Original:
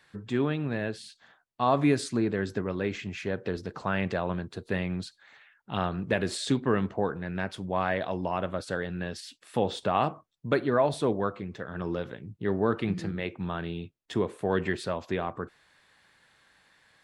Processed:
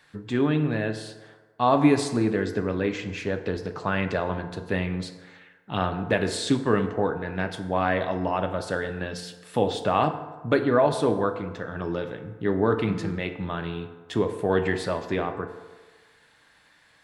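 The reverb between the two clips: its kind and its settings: FDN reverb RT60 1.4 s, low-frequency decay 0.75×, high-frequency decay 0.5×, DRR 7 dB; trim +3 dB

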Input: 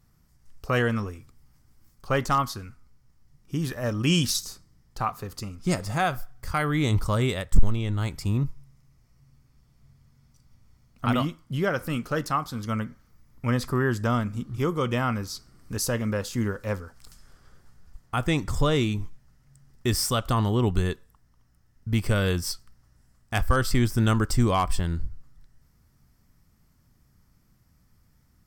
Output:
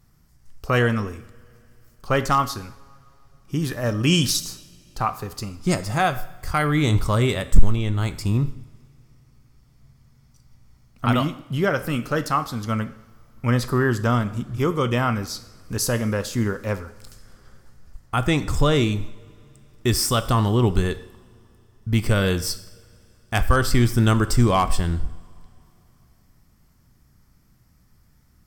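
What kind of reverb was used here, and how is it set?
two-slope reverb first 0.72 s, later 3.4 s, from -20 dB, DRR 12 dB; trim +4 dB

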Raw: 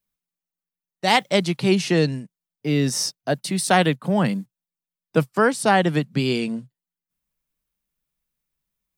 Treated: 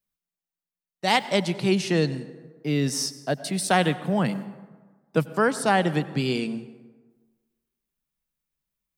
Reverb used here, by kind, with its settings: plate-style reverb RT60 1.4 s, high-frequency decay 0.5×, pre-delay 80 ms, DRR 15 dB; trim -3.5 dB

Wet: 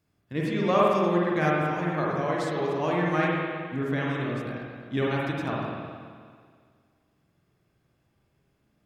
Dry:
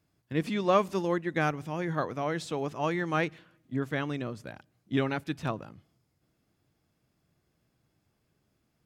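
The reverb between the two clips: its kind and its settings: spring tank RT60 1.9 s, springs 46/51 ms, chirp 70 ms, DRR -4.5 dB; trim -1.5 dB

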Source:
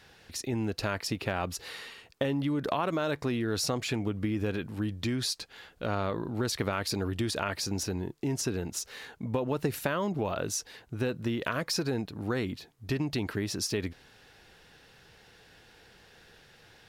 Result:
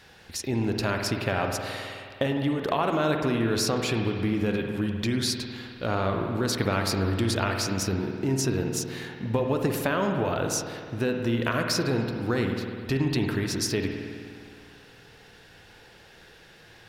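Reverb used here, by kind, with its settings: spring tank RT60 2.2 s, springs 52 ms, chirp 55 ms, DRR 3 dB; trim +3.5 dB

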